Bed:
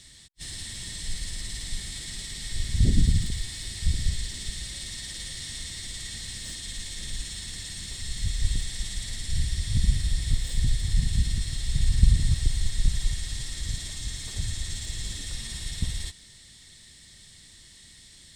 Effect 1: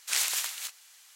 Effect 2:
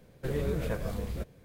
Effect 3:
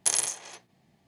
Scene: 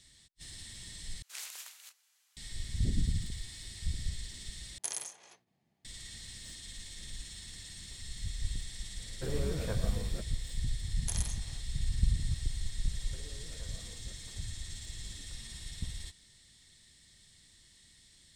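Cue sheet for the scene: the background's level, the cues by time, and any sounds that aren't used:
bed -10 dB
1.22 s: replace with 1 -16 dB
4.78 s: replace with 3 -12.5 dB
8.98 s: add 2 -4.5 dB
11.02 s: add 3 -13.5 dB
12.90 s: add 2 -8 dB + compression, threshold -42 dBFS

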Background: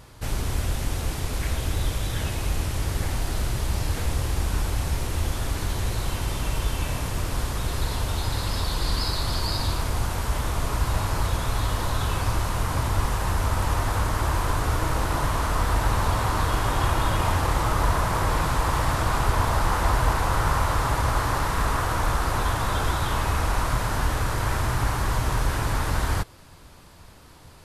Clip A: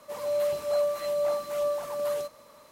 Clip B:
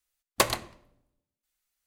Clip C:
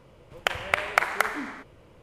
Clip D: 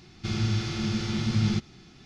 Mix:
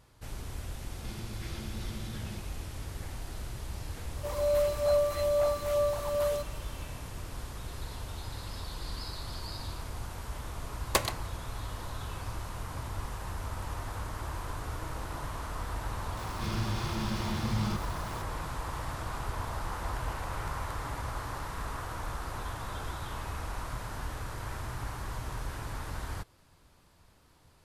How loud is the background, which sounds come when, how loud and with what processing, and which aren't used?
background -13.5 dB
0.81 s: add D -4 dB + compression, threshold -36 dBFS
4.15 s: add A
10.55 s: add B -4 dB
16.17 s: add D -8 dB + jump at every zero crossing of -35 dBFS
19.50 s: add C -12.5 dB + compression, threshold -34 dBFS

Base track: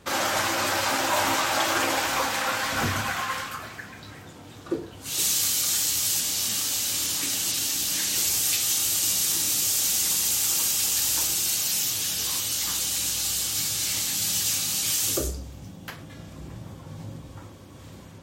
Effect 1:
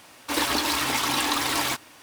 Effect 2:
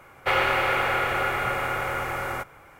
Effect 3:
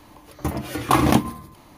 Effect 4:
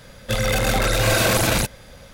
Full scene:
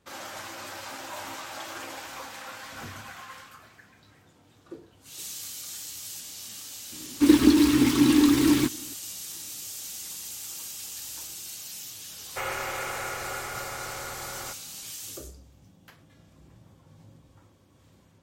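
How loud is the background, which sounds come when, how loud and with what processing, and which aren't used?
base track -14.5 dB
6.92 s: add 1 -5 dB + resonant low shelf 450 Hz +13 dB, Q 3
12.10 s: add 2 -9.5 dB + decimation joined by straight lines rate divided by 4×
not used: 3, 4

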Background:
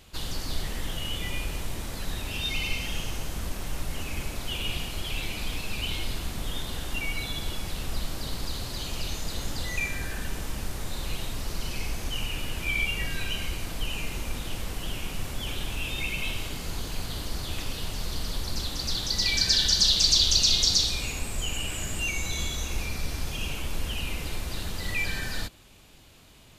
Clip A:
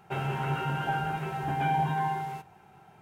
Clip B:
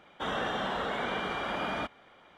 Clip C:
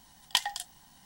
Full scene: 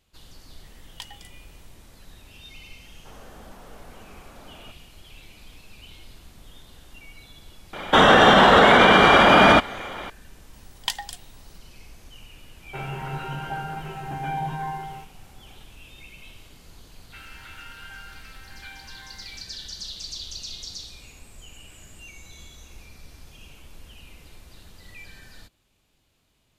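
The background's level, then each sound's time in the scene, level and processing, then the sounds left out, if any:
background -15 dB
0.65 s: add C -13 dB
2.85 s: add B -12.5 dB + slew-rate limiter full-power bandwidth 18 Hz
7.73 s: add B -3.5 dB + loudness maximiser +26.5 dB
10.53 s: add C -0.5 dB
12.63 s: add A -2 dB
17.02 s: add A -3.5 dB + high-pass 1.5 kHz 24 dB/octave

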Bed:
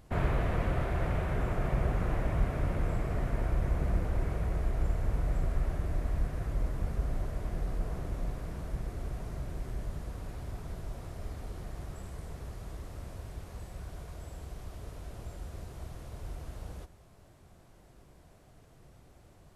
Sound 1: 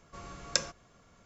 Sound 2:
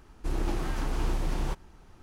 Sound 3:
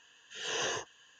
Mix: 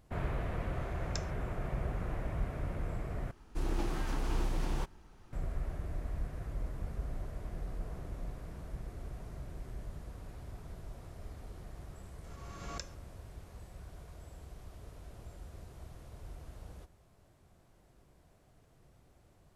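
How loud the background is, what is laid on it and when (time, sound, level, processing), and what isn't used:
bed -6.5 dB
0.60 s: add 1 -14.5 dB
3.31 s: replace with 2 -4 dB
12.24 s: add 1 -16.5 dB + swell ahead of each attack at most 33 dB/s
not used: 3

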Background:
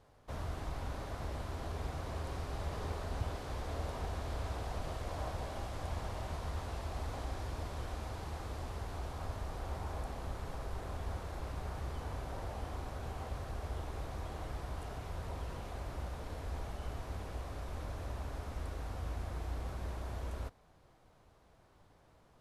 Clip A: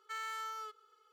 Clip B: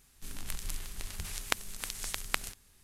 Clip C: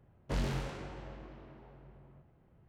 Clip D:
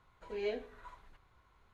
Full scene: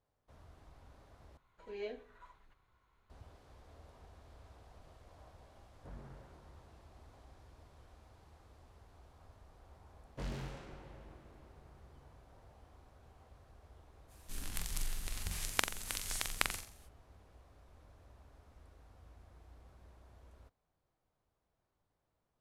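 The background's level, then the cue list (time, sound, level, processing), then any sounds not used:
background -19 dB
1.37 s: replace with D -6 dB
5.55 s: add C -18 dB + low-pass 1.7 kHz 24 dB/octave
9.88 s: add C -8 dB
14.07 s: add B -2 dB, fades 0.05 s + flutter echo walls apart 7.5 m, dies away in 0.43 s
not used: A

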